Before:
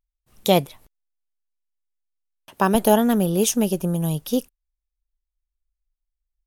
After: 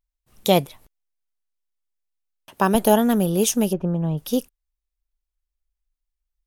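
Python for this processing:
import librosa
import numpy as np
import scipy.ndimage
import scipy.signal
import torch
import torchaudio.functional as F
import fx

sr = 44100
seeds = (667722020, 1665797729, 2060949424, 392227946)

y = fx.lowpass(x, sr, hz=1700.0, slope=12, at=(3.72, 4.17), fade=0.02)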